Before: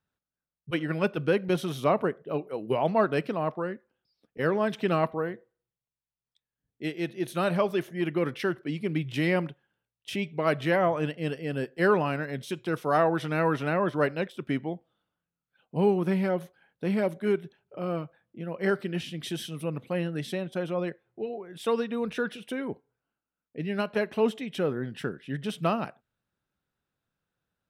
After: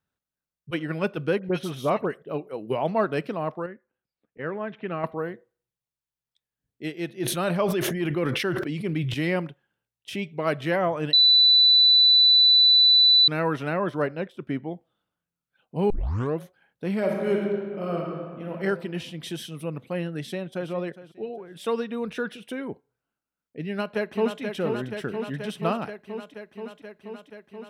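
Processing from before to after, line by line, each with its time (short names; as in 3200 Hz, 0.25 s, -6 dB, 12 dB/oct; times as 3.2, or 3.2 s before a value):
1.39–2.23 dispersion highs, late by 62 ms, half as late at 2200 Hz
3.66–5.04 ladder low-pass 3000 Hz, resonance 25%
7.18–9.14 sustainer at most 25 dB/s
11.13–13.28 bleep 3980 Hz -13 dBFS
14.02–14.71 high shelf 2600 Hz -9 dB
15.9 tape start 0.50 s
16.98–18.52 reverb throw, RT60 1.8 s, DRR -1 dB
20.19–20.7 echo throw 0.41 s, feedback 30%, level -15 dB
23.67–24.41 echo throw 0.48 s, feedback 80%, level -5.5 dB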